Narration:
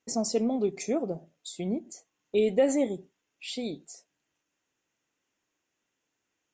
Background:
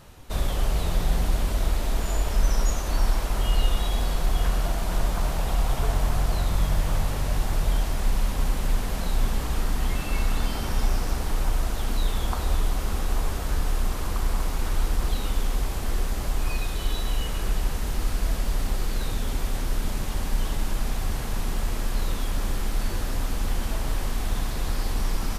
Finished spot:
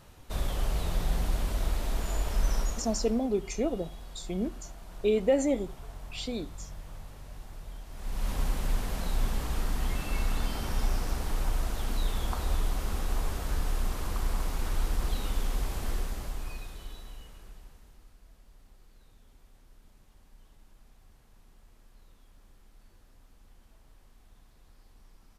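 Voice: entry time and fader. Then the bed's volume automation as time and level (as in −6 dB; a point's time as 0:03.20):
2.70 s, −1.0 dB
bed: 0:02.57 −5.5 dB
0:03.27 −20 dB
0:07.86 −20 dB
0:08.30 −5 dB
0:15.89 −5 dB
0:18.18 −31.5 dB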